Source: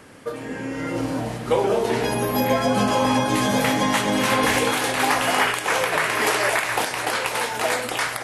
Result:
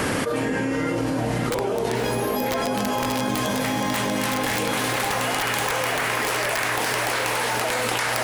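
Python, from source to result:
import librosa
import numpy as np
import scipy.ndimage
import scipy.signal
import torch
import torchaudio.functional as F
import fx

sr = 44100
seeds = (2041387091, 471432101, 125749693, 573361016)

p1 = fx.hum_notches(x, sr, base_hz=60, count=6, at=(2.19, 2.96))
p2 = (np.mod(10.0 ** (10.5 / 20.0) * p1 + 1.0, 2.0) - 1.0) / 10.0 ** (10.5 / 20.0)
p3 = p2 + fx.echo_diffused(p2, sr, ms=583, feedback_pct=48, wet_db=-7, dry=0)
p4 = fx.env_flatten(p3, sr, amount_pct=100)
y = F.gain(torch.from_numpy(p4), -8.0).numpy()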